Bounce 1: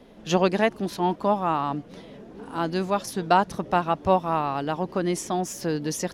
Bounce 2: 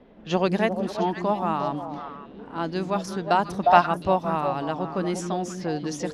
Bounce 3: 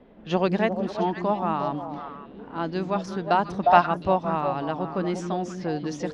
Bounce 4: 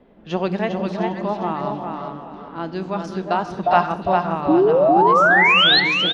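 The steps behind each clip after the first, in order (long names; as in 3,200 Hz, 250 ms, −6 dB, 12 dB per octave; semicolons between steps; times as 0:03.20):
echo through a band-pass that steps 178 ms, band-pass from 220 Hz, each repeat 1.4 octaves, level −2 dB; low-pass that shuts in the quiet parts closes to 2,400 Hz, open at −18 dBFS; gain on a spectral selection 0:03.63–0:03.86, 560–5,300 Hz +9 dB; level −2 dB
high-frequency loss of the air 96 metres
sound drawn into the spectrogram rise, 0:04.48–0:05.80, 290–4,400 Hz −15 dBFS; repeating echo 402 ms, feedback 25%, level −5 dB; on a send at −12.5 dB: convolution reverb, pre-delay 3 ms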